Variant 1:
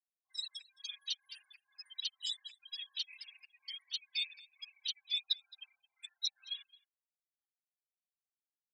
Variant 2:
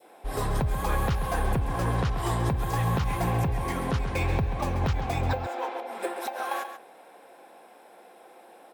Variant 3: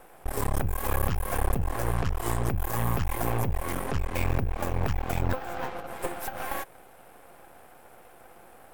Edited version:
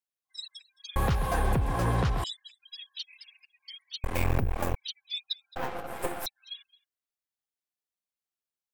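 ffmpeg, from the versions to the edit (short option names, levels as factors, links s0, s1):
-filter_complex "[2:a]asplit=2[s0][s1];[0:a]asplit=4[s2][s3][s4][s5];[s2]atrim=end=0.962[s6];[1:a]atrim=start=0.958:end=2.242[s7];[s3]atrim=start=2.238:end=4.042[s8];[s0]atrim=start=4.038:end=4.752[s9];[s4]atrim=start=4.748:end=5.562[s10];[s1]atrim=start=5.558:end=6.262[s11];[s5]atrim=start=6.258[s12];[s6][s7]acrossfade=d=0.004:c1=hsin:c2=hsin[s13];[s13][s8]acrossfade=d=0.004:c1=hsin:c2=hsin[s14];[s14][s9]acrossfade=d=0.004:c1=hsin:c2=hsin[s15];[s15][s10]acrossfade=d=0.004:c1=hsin:c2=hsin[s16];[s16][s11]acrossfade=d=0.004:c1=hsin:c2=hsin[s17];[s17][s12]acrossfade=d=0.004:c1=hsin:c2=hsin"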